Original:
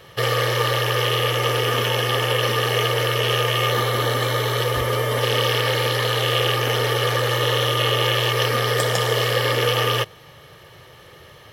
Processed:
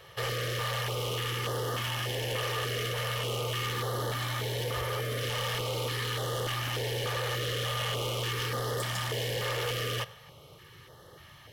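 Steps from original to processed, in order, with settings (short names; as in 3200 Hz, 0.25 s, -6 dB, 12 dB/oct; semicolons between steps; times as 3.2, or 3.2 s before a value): on a send at -24 dB: reverb RT60 0.50 s, pre-delay 62 ms; on the sum: soft clip -22 dBFS, distortion -9 dB; stepped notch 3.4 Hz 240–2400 Hz; gain -5.5 dB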